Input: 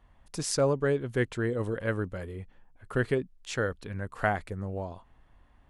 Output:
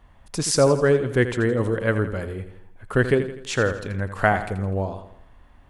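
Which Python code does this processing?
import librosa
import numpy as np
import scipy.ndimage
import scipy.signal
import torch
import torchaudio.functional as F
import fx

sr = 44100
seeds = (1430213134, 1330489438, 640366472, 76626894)

y = fx.echo_feedback(x, sr, ms=83, feedback_pct=48, wet_db=-11.0)
y = y * 10.0 ** (8.0 / 20.0)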